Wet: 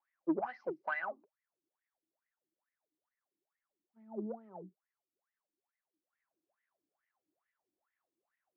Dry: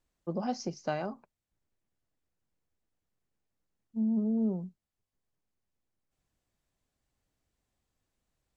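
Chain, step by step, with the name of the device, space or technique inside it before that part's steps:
wah-wah guitar rig (LFO wah 2.3 Hz 300–2,000 Hz, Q 15; tube saturation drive 36 dB, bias 0.2; loudspeaker in its box 98–3,700 Hz, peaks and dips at 130 Hz −7 dB, 250 Hz −7 dB, 460 Hz −7 dB)
level +15.5 dB

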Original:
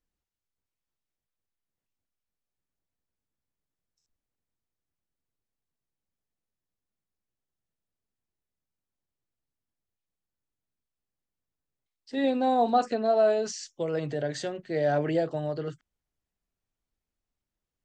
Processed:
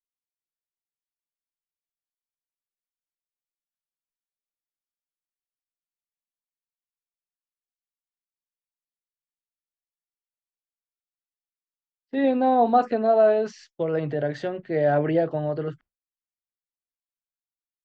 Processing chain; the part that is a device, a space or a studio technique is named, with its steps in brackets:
hearing-loss simulation (low-pass filter 2,400 Hz 12 dB per octave; downward expander −48 dBFS)
level +4.5 dB

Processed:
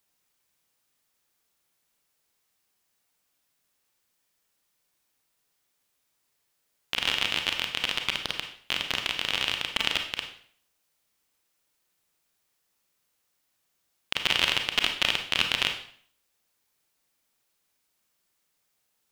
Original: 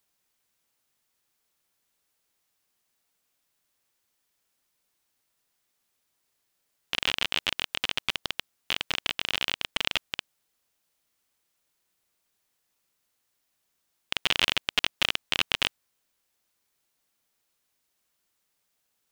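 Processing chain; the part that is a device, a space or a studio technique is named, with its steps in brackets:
bathroom (convolution reverb RT60 0.55 s, pre-delay 28 ms, DRR 4 dB)

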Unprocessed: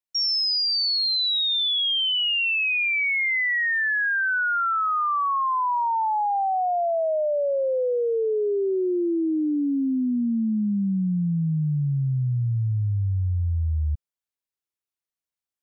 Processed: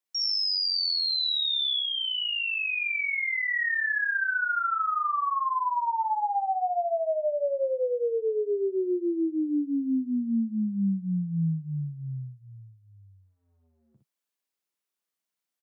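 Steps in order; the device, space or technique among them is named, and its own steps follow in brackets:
stacked limiters (brickwall limiter −25 dBFS, peak gain reduction 5 dB; brickwall limiter −28 dBFS, peak gain reduction 3 dB)
Butterworth high-pass 150 Hz 48 dB per octave
0:01.79–0:03.48: high-shelf EQ 5,100 Hz −10.5 dB
ambience of single reflections 30 ms −11.5 dB, 61 ms −4.5 dB
level +2.5 dB

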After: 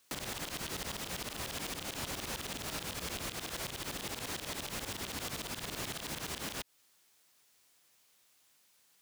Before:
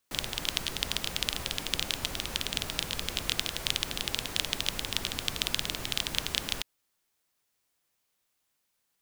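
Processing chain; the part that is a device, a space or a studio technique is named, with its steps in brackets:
broadcast voice chain (high-pass filter 99 Hz 6 dB per octave; de-essing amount 75%; downward compressor 4 to 1, threshold −44 dBFS, peak gain reduction 9 dB; parametric band 5,400 Hz +3.5 dB 2.7 octaves; brickwall limiter −33.5 dBFS, peak gain reduction 10 dB)
level +7.5 dB

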